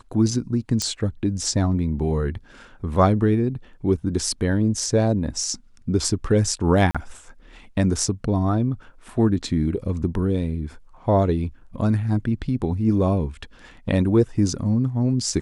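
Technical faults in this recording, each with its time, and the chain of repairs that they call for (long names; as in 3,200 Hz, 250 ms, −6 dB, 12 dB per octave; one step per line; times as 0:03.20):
0:00.82: click −10 dBFS
0:06.91–0:06.95: drop-out 36 ms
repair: click removal
repair the gap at 0:06.91, 36 ms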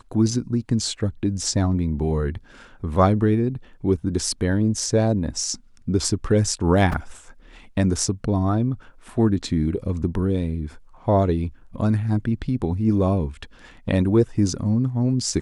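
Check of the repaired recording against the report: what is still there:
none of them is left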